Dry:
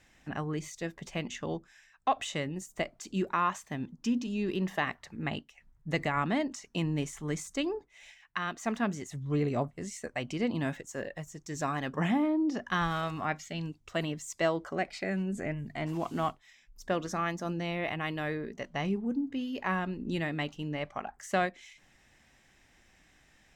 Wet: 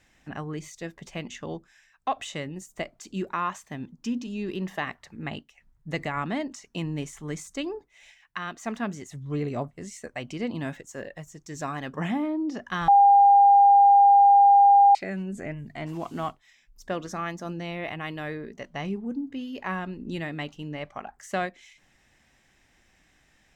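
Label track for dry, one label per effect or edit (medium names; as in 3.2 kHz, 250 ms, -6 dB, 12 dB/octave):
12.880000	14.950000	bleep 803 Hz -12 dBFS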